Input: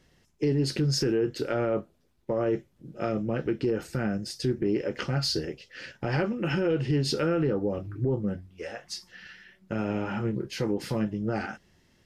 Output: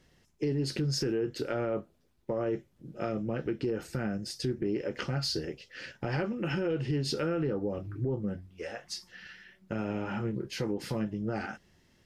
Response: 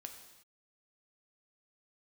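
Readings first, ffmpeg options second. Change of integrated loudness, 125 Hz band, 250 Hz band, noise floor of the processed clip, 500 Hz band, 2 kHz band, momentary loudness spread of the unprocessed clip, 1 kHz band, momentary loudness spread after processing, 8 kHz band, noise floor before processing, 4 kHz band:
−4.5 dB, −4.5 dB, −4.5 dB, −67 dBFS, −4.5 dB, −3.5 dB, 13 LU, −4.0 dB, 11 LU, −3.5 dB, −66 dBFS, −3.5 dB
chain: -af "acompressor=threshold=-31dB:ratio=1.5,volume=-1.5dB"

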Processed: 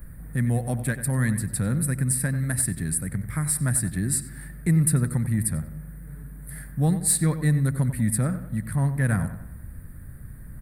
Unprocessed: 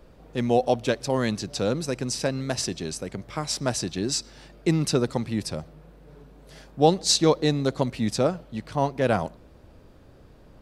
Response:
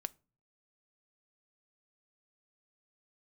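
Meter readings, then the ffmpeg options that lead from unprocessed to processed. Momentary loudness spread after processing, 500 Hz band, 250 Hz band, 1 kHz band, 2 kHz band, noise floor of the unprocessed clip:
20 LU, −12.5 dB, +0.5 dB, −10.5 dB, +1.5 dB, −52 dBFS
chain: -filter_complex "[0:a]firequalizer=gain_entry='entry(140,0);entry(380,-21);entry(820,-21);entry(1800,-2);entry(2800,-27);entry(4200,-21);entry(6200,-28);entry(8900,9)':delay=0.05:min_phase=1,asplit=2[link_01][link_02];[link_02]acompressor=threshold=-40dB:ratio=6,volume=2.5dB[link_03];[link_01][link_03]amix=inputs=2:normalize=0,asoftclip=type=tanh:threshold=-15dB,asplit=2[link_04][link_05];[link_05]adelay=93,lowpass=frequency=2900:poles=1,volume=-11dB,asplit=2[link_06][link_07];[link_07]adelay=93,lowpass=frequency=2900:poles=1,volume=0.49,asplit=2[link_08][link_09];[link_09]adelay=93,lowpass=frequency=2900:poles=1,volume=0.49,asplit=2[link_10][link_11];[link_11]adelay=93,lowpass=frequency=2900:poles=1,volume=0.49,asplit=2[link_12][link_13];[link_13]adelay=93,lowpass=frequency=2900:poles=1,volume=0.49[link_14];[link_04][link_06][link_08][link_10][link_12][link_14]amix=inputs=6:normalize=0,volume=5.5dB"

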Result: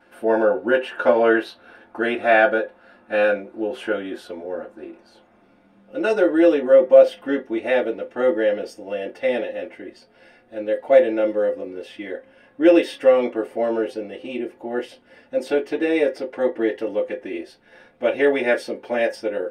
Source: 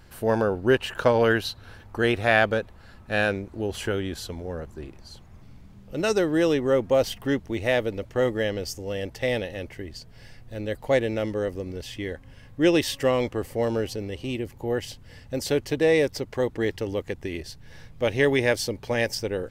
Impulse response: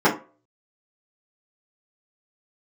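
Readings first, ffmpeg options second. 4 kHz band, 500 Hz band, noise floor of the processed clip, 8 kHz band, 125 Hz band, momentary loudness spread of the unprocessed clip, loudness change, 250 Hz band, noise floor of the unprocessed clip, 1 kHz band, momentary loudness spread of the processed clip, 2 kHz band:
−4.5 dB, +6.0 dB, −56 dBFS, below −10 dB, below −15 dB, 15 LU, +5.0 dB, +3.5 dB, −49 dBFS, +4.5 dB, 17 LU, +2.5 dB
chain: -filter_complex "[1:a]atrim=start_sample=2205,asetrate=74970,aresample=44100[link_01];[0:a][link_01]afir=irnorm=-1:irlink=0,volume=-16dB"

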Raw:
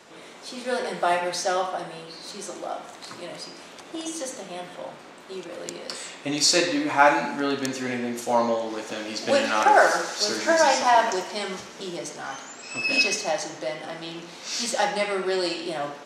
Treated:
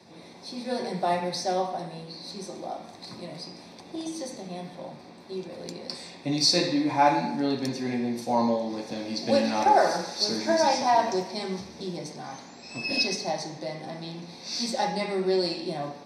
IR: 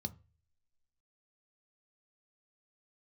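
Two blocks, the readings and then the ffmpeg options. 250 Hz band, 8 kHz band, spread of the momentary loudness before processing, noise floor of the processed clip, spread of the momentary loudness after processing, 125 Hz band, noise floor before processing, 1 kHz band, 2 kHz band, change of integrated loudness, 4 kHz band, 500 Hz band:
+1.5 dB, −6.5 dB, 18 LU, −47 dBFS, 17 LU, +5.5 dB, −45 dBFS, −2.5 dB, −9.5 dB, −3.0 dB, −1.5 dB, −3.0 dB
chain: -filter_complex "[1:a]atrim=start_sample=2205[link_01];[0:a][link_01]afir=irnorm=-1:irlink=0,volume=-4dB"

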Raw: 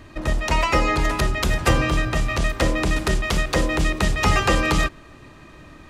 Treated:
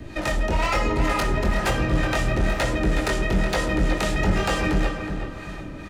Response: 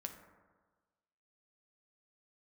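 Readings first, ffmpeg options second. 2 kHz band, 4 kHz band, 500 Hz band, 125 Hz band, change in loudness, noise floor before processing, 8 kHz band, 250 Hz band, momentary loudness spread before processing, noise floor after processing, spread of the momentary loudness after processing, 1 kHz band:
−2.5 dB, −4.0 dB, −0.5 dB, −1.5 dB, −2.0 dB, −45 dBFS, −4.5 dB, 0.0 dB, 4 LU, −36 dBFS, 6 LU, −3.0 dB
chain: -filter_complex "[0:a]acrossover=split=140|940|2200[link_01][link_02][link_03][link_04];[link_01]acompressor=threshold=-31dB:ratio=4[link_05];[link_02]acompressor=threshold=-30dB:ratio=4[link_06];[link_03]acompressor=threshold=-37dB:ratio=4[link_07];[link_04]acompressor=threshold=-41dB:ratio=4[link_08];[link_05][link_06][link_07][link_08]amix=inputs=4:normalize=0,acrossover=split=540[link_09][link_10];[link_09]aeval=exprs='val(0)*(1-0.7/2+0.7/2*cos(2*PI*2.1*n/s))':channel_layout=same[link_11];[link_10]aeval=exprs='val(0)*(1-0.7/2-0.7/2*cos(2*PI*2.1*n/s))':channel_layout=same[link_12];[link_11][link_12]amix=inputs=2:normalize=0,flanger=delay=17:depth=7:speed=1.1,asoftclip=type=hard:threshold=-30dB,asuperstop=centerf=1100:order=4:qfactor=6.5,asplit=2[link_13][link_14];[link_14]adelay=369,lowpass=frequency=2900:poles=1,volume=-7dB,asplit=2[link_15][link_16];[link_16]adelay=369,lowpass=frequency=2900:poles=1,volume=0.4,asplit=2[link_17][link_18];[link_18]adelay=369,lowpass=frequency=2900:poles=1,volume=0.4,asplit=2[link_19][link_20];[link_20]adelay=369,lowpass=frequency=2900:poles=1,volume=0.4,asplit=2[link_21][link_22];[link_22]adelay=369,lowpass=frequency=2900:poles=1,volume=0.4[link_23];[link_13][link_15][link_17][link_19][link_21][link_23]amix=inputs=6:normalize=0,asplit=2[link_24][link_25];[1:a]atrim=start_sample=2205[link_26];[link_25][link_26]afir=irnorm=-1:irlink=0,volume=6.5dB[link_27];[link_24][link_27]amix=inputs=2:normalize=0,volume=5dB"

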